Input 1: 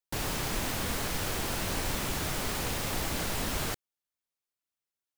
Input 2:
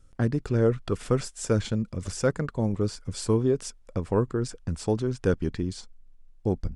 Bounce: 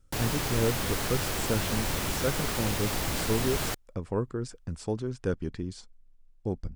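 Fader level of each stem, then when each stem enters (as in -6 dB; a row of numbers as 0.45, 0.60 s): +1.5, -5.5 dB; 0.00, 0.00 s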